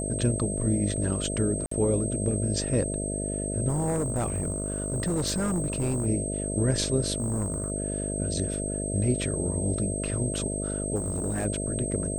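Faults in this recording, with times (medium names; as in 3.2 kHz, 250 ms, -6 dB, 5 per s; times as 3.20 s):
buzz 50 Hz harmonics 13 -32 dBFS
whine 8.3 kHz -33 dBFS
1.66–1.71 s: dropout 54 ms
3.68–6.07 s: clipped -23 dBFS
7.18–7.72 s: clipped -24 dBFS
10.95–11.46 s: clipped -24.5 dBFS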